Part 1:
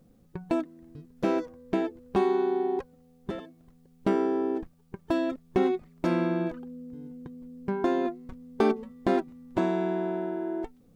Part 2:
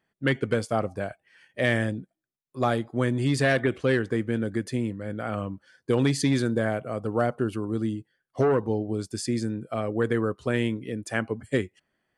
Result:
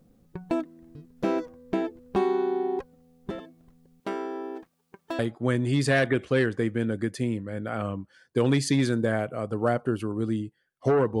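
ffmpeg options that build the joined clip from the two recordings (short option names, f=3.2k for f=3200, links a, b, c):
-filter_complex "[0:a]asettb=1/sr,asplit=3[a][b][c];[a]atrim=end=4.004[d];[b]atrim=start=4:end=5.19,asetpts=PTS-STARTPTS,afade=t=in:d=0.004:c=qsin,afade=t=out:st=1.186:d=0.004:c=qsin,highpass=f=800:p=1[e];[c]atrim=start=5.186[f];[d][e]acrossfade=d=0.004:c1=hsin:c2=qsin[g];[g][f]acrossfade=d=0.004:c1=qsin:c2=hsin,apad=whole_dur=11.2,atrim=end=11.2,atrim=end=5.192[h];[1:a]atrim=start=2.718:end=8.73[i];[h][i]acrossfade=d=0.004:c1=hsin:c2=hsin"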